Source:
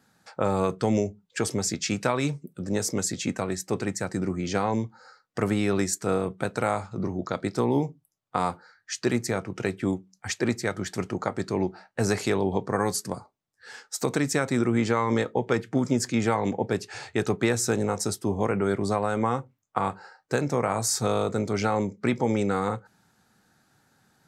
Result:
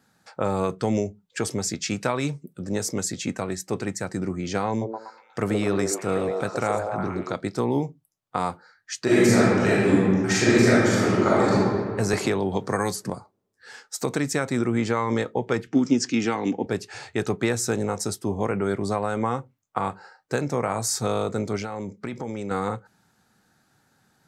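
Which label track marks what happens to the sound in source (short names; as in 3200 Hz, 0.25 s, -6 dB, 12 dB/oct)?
4.690000	7.340000	delay with a stepping band-pass 0.121 s, band-pass from 480 Hz, each repeat 0.7 oct, level 0 dB
9.040000	11.540000	reverb throw, RT60 1.9 s, DRR -10 dB
12.130000	13.100000	three-band squash depth 100%
15.670000	16.660000	speaker cabinet 160–7400 Hz, peaks and dips at 280 Hz +9 dB, 590 Hz -8 dB, 970 Hz -4 dB, 2800 Hz +8 dB, 5600 Hz +7 dB
21.560000	22.510000	compressor, threshold -27 dBFS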